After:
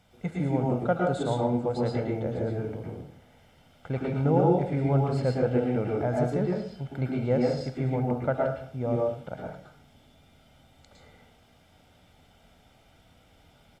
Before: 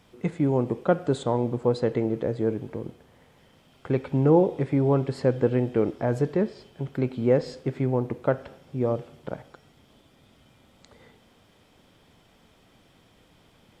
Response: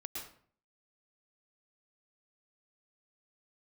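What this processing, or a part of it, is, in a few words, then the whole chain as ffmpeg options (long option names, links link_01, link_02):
microphone above a desk: -filter_complex "[0:a]aecho=1:1:1.4:0.54[link_01];[1:a]atrim=start_sample=2205[link_02];[link_01][link_02]afir=irnorm=-1:irlink=0"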